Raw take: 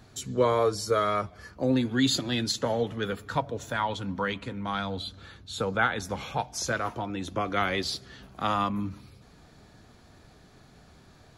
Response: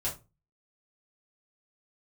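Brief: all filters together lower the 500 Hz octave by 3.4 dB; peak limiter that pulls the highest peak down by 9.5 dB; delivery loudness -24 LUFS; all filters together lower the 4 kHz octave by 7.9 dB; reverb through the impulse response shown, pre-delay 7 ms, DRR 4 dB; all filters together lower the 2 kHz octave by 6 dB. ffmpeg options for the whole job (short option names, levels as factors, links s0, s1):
-filter_complex "[0:a]equalizer=f=500:t=o:g=-3.5,equalizer=f=2000:t=o:g=-7,equalizer=f=4000:t=o:g=-7.5,alimiter=limit=0.075:level=0:latency=1,asplit=2[s0][s1];[1:a]atrim=start_sample=2205,adelay=7[s2];[s1][s2]afir=irnorm=-1:irlink=0,volume=0.376[s3];[s0][s3]amix=inputs=2:normalize=0,volume=2.82"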